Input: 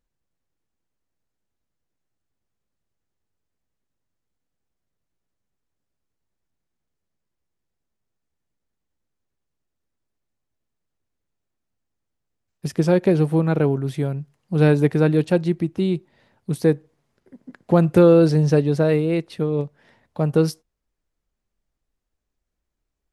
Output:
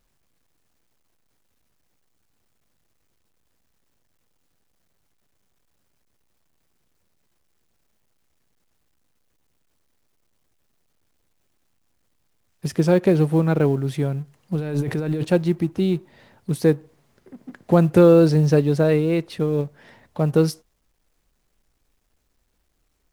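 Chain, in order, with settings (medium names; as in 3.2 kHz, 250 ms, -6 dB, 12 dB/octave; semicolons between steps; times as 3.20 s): companding laws mixed up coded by mu; 14.55–15.25 s: compressor with a negative ratio -24 dBFS, ratio -1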